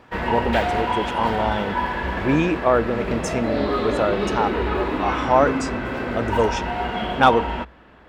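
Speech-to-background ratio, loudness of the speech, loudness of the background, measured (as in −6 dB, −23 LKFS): 2.0 dB, −23.0 LKFS, −25.0 LKFS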